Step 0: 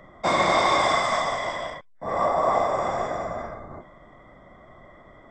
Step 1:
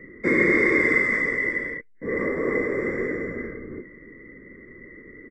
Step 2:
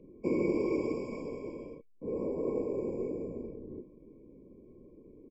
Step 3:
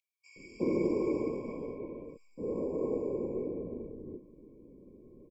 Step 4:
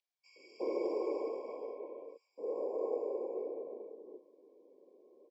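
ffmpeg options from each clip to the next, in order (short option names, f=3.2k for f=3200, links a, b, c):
-af "firequalizer=gain_entry='entry(140,0);entry(260,10);entry(460,11);entry(680,-27);entry(2000,12);entry(3000,-27);entry(4900,-16);entry(8900,-13)':delay=0.05:min_phase=1"
-af "afftfilt=real='re*eq(mod(floor(b*sr/1024/1100),2),0)':imag='im*eq(mod(floor(b*sr/1024/1100),2),0)':win_size=1024:overlap=0.75,volume=-7.5dB"
-filter_complex "[0:a]acrossover=split=2500[a][b];[a]adelay=360[c];[c][b]amix=inputs=2:normalize=0"
-af "highpass=f=450:w=0.5412,highpass=f=450:w=1.3066,equalizer=f=750:t=q:w=4:g=7,equalizer=f=1.3k:t=q:w=4:g=-10,equalizer=f=2.3k:t=q:w=4:g=-9,lowpass=f=5.7k:w=0.5412,lowpass=f=5.7k:w=1.3066,volume=1dB"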